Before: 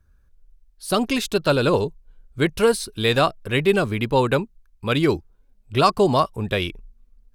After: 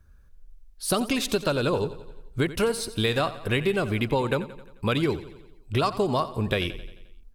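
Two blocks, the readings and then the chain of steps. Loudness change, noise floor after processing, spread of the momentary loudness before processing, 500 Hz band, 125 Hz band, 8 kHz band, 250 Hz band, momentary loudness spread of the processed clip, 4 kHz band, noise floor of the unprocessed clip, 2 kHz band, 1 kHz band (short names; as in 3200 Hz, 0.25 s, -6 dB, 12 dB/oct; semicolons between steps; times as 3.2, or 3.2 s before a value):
-5.0 dB, -53 dBFS, 9 LU, -6.0 dB, -3.5 dB, -1.0 dB, -4.5 dB, 9 LU, -4.0 dB, -58 dBFS, -4.5 dB, -7.0 dB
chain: compressor, threshold -25 dBFS, peak gain reduction 13.5 dB; feedback echo 88 ms, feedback 57%, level -15.5 dB; gain +3.5 dB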